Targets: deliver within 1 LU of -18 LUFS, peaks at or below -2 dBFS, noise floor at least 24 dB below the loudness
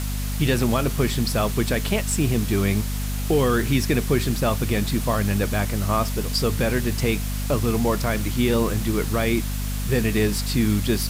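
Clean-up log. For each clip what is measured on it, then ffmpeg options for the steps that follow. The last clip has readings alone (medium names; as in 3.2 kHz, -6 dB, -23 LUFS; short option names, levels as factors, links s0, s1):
hum 50 Hz; highest harmonic 250 Hz; hum level -24 dBFS; noise floor -26 dBFS; noise floor target -47 dBFS; loudness -22.5 LUFS; peak level -8.0 dBFS; loudness target -18.0 LUFS
-> -af "bandreject=f=50:t=h:w=4,bandreject=f=100:t=h:w=4,bandreject=f=150:t=h:w=4,bandreject=f=200:t=h:w=4,bandreject=f=250:t=h:w=4"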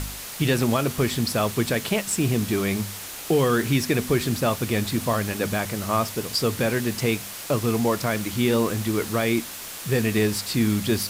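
hum not found; noise floor -36 dBFS; noise floor target -48 dBFS
-> -af "afftdn=nr=12:nf=-36"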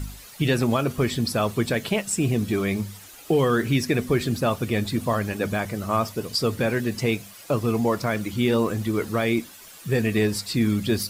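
noise floor -45 dBFS; noise floor target -48 dBFS
-> -af "afftdn=nr=6:nf=-45"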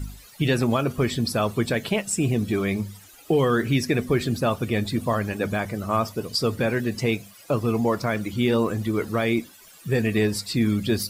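noise floor -49 dBFS; loudness -24.5 LUFS; peak level -9.5 dBFS; loudness target -18.0 LUFS
-> -af "volume=2.11"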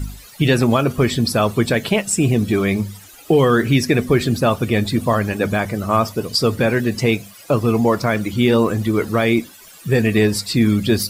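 loudness -18.0 LUFS; peak level -3.0 dBFS; noise floor -43 dBFS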